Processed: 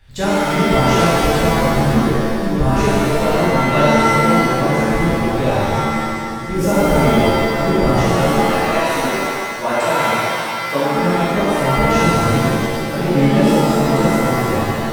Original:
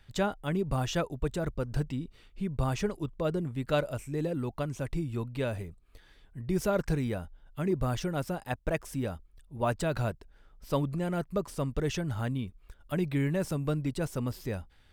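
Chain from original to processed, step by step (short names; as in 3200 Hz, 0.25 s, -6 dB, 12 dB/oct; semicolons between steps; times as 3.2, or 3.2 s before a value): 8.32–10.97 HPF 230 Hz 12 dB/oct; shimmer reverb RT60 2 s, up +7 st, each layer -2 dB, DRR -10 dB; gain +3 dB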